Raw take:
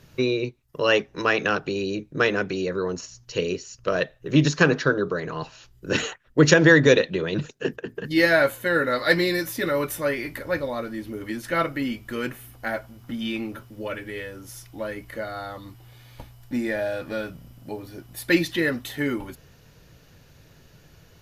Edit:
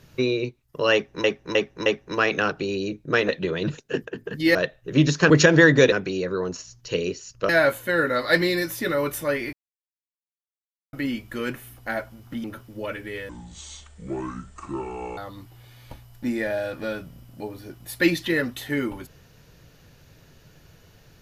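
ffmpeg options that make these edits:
-filter_complex "[0:a]asplit=14[a][b][c][d][e][f][g][h][i][j][k][l][m][n];[a]atrim=end=1.242[o];[b]atrim=start=0.928:end=1.242[p];[c]atrim=start=0.928:end=1.242[q];[d]atrim=start=0.928:end=2.362[r];[e]atrim=start=6.998:end=8.262[s];[f]atrim=start=3.928:end=4.682[t];[g]atrim=start=6.378:end=7.002[u];[h]atrim=start=2.358:end=3.932[v];[i]atrim=start=8.258:end=10.3,asetpts=PTS-STARTPTS,afade=t=out:st=2.038:d=0.004:c=hsin[w];[j]atrim=start=10.3:end=11.7,asetpts=PTS-STARTPTS,volume=0[x];[k]atrim=start=11.7:end=13.212,asetpts=PTS-STARTPTS,afade=t=in:d=0.004:c=hsin[y];[l]atrim=start=13.458:end=14.314[z];[m]atrim=start=14.31:end=15.46,asetpts=PTS-STARTPTS,asetrate=26901,aresample=44100,atrim=end_sample=83139,asetpts=PTS-STARTPTS[aa];[n]atrim=start=15.456[ab];[o][p]acrossfade=d=0.004:c1=hsin:c2=hsin[ac];[ac][q]acrossfade=d=0.004:c1=hsin:c2=hsin[ad];[ad][r]acrossfade=d=0.004:c1=hsin:c2=hsin[ae];[ae][s]acrossfade=d=0.004:c1=hsin:c2=hsin[af];[af][t]acrossfade=d=0.004:c1=hsin:c2=hsin[ag];[ag][u]acrossfade=d=0.004:c1=hsin:c2=hsin[ah];[ah][v]acrossfade=d=0.004:c1=hsin:c2=hsin[ai];[w][x][y]concat=n=3:v=0:a=1[aj];[ai][aj]acrossfade=d=0.004:c1=hsin:c2=hsin[ak];[ak][z]acrossfade=d=0.004:c1=hsin:c2=hsin[al];[al][aa]acrossfade=d=0.004:c1=hsin:c2=hsin[am];[am][ab]acrossfade=d=0.004:c1=hsin:c2=hsin"

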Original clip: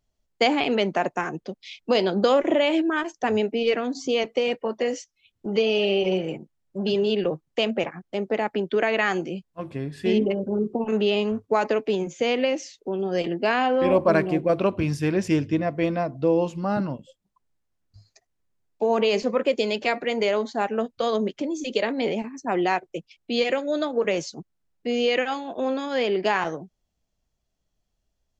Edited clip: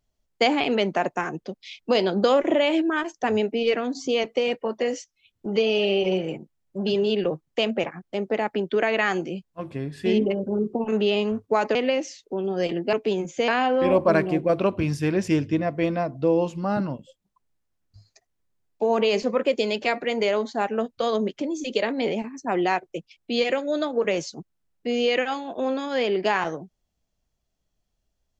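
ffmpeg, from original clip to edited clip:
-filter_complex "[0:a]asplit=4[a][b][c][d];[a]atrim=end=11.752[e];[b]atrim=start=12.298:end=13.482[f];[c]atrim=start=11.748:end=12.302[g];[d]atrim=start=13.478[h];[e][f]acrossfade=d=0.004:c1=hsin:c2=hsin[i];[i][g]acrossfade=d=0.004:c1=hsin:c2=hsin[j];[j][h]acrossfade=d=0.004:c1=hsin:c2=hsin"

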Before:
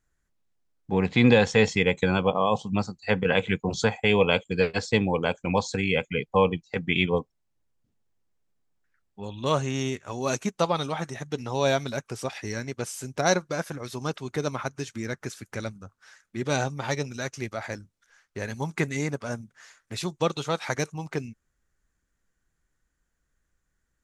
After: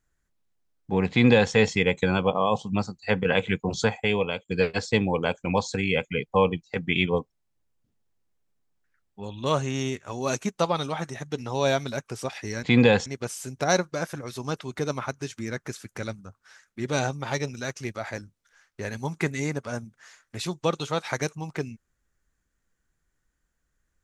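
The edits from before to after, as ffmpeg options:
-filter_complex "[0:a]asplit=4[a][b][c][d];[a]atrim=end=4.48,asetpts=PTS-STARTPTS,afade=t=out:st=3.91:d=0.57:silence=0.188365[e];[b]atrim=start=4.48:end=12.632,asetpts=PTS-STARTPTS,afade=t=in:d=0.004:c=hsin:silence=0.188365[f];[c]atrim=start=1.098:end=1.532[g];[d]atrim=start=12.628[h];[e][f]concat=n=2:v=0:a=1[i];[i][g]acrossfade=d=0.004:c1=hsin:c2=hsin[j];[j][h]acrossfade=d=0.004:c1=hsin:c2=hsin"

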